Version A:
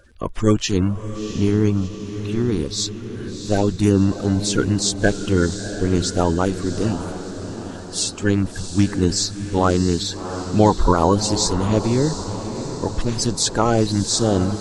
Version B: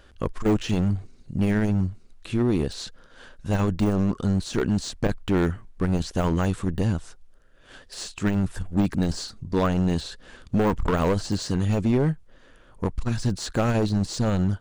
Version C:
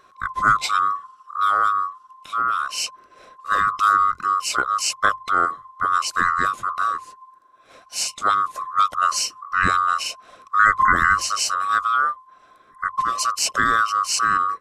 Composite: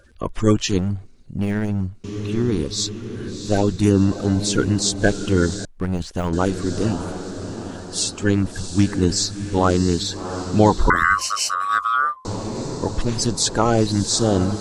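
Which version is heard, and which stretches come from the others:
A
0.78–2.04 s: from B
5.65–6.33 s: from B
10.90–12.25 s: from C

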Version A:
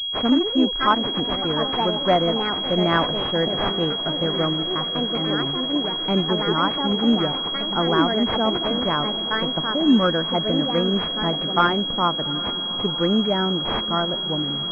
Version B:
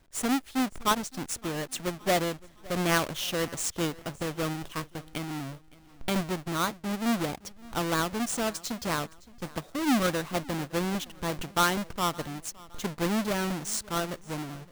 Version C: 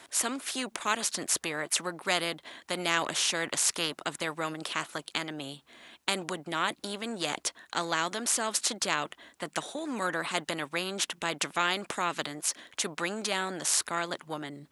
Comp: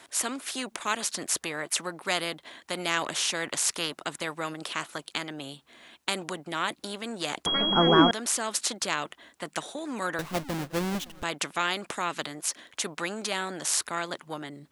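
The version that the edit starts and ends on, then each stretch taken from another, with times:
C
7.46–8.11 s: from A
10.19–11.23 s: from B

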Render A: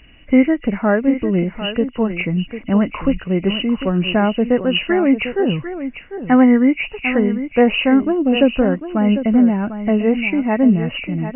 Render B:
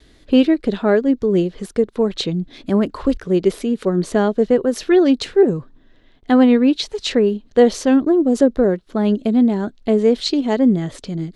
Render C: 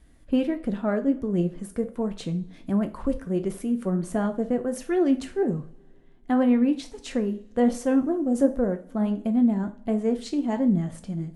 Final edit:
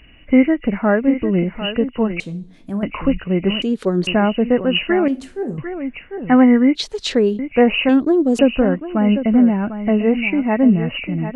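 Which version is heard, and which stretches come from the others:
A
2.20–2.83 s: from C
3.62–4.07 s: from B
5.08–5.58 s: from C
6.75–7.39 s: from B
7.89–8.39 s: from B

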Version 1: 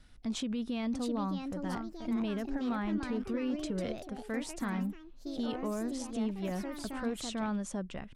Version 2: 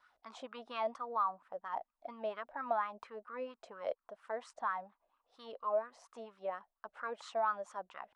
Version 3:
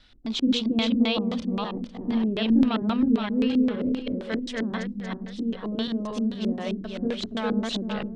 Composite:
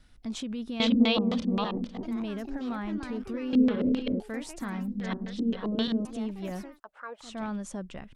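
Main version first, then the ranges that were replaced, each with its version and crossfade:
1
0.80–2.03 s: from 3
3.53–4.20 s: from 3
4.88–6.05 s: from 3
6.68–7.30 s: from 2, crossfade 0.24 s

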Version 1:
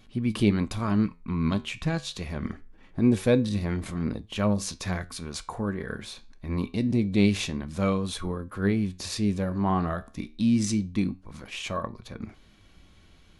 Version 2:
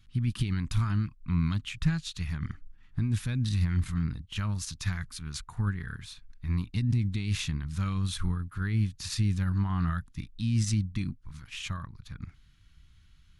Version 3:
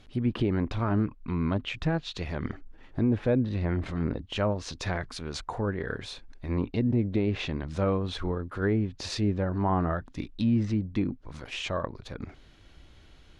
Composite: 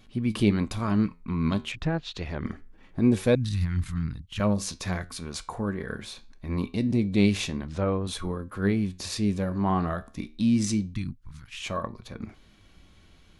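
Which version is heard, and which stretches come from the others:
1
1.72–2.45 s: from 3
3.35–4.40 s: from 2
7.67–8.07 s: from 3
10.94–11.62 s: from 2

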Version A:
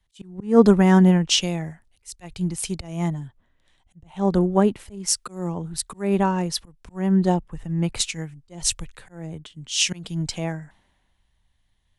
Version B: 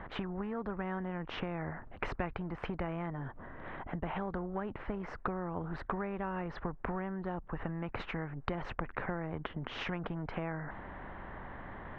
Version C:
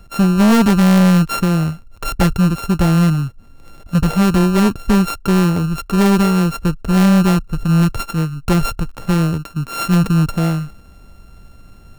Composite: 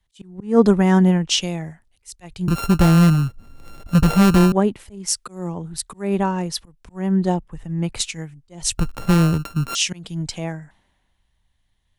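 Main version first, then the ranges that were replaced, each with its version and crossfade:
A
2.48–4.52 s: from C
8.78–9.75 s: from C
not used: B

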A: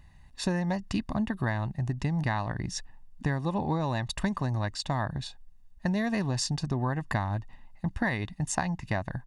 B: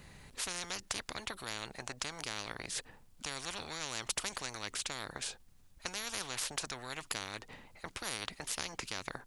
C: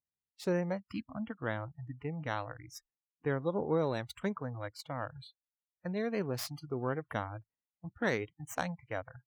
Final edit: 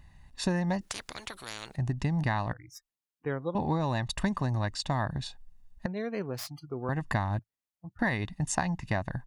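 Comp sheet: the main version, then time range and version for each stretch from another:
A
0.81–1.76 s: from B
2.53–3.55 s: from C
5.86–6.89 s: from C
7.39–7.99 s: from C

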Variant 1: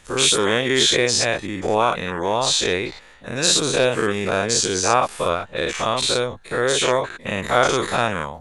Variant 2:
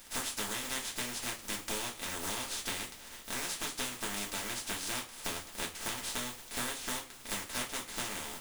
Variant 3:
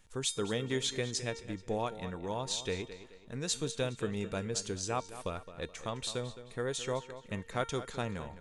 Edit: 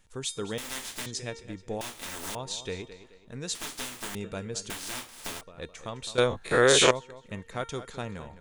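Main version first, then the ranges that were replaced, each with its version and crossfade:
3
0.58–1.06 s: from 2
1.81–2.35 s: from 2
3.55–4.15 s: from 2
4.70–5.41 s: from 2
6.18–6.91 s: from 1

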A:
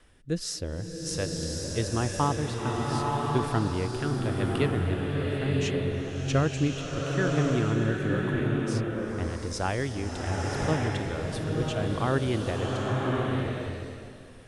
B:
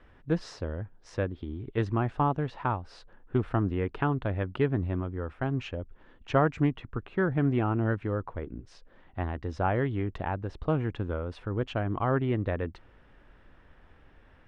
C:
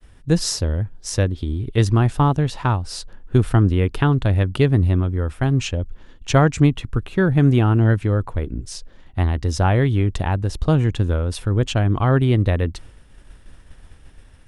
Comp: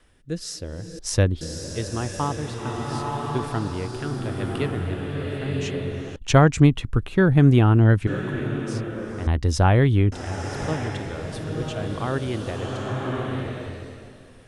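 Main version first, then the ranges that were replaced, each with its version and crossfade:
A
0.99–1.41 s: from C
6.16–8.07 s: from C
9.27–10.12 s: from C
not used: B

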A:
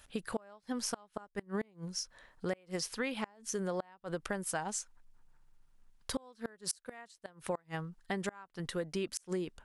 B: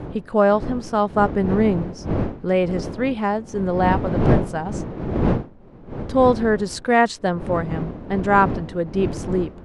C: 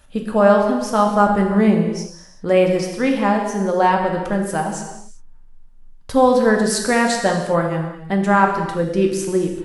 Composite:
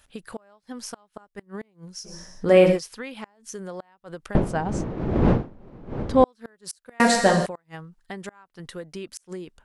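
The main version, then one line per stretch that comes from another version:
A
2.09–2.75 s: from C, crossfade 0.10 s
4.35–6.24 s: from B
7.00–7.46 s: from C

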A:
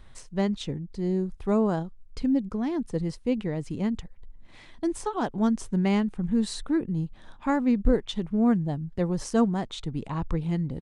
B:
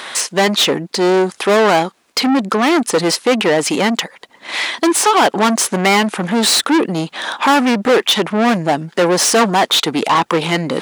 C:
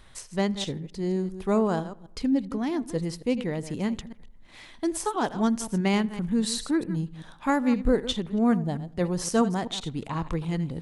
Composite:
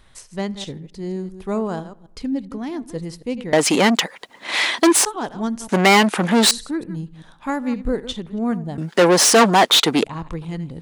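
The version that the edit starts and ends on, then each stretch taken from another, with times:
C
3.53–5.05 s: from B
5.69–6.51 s: from B
8.78–10.04 s: from B
not used: A

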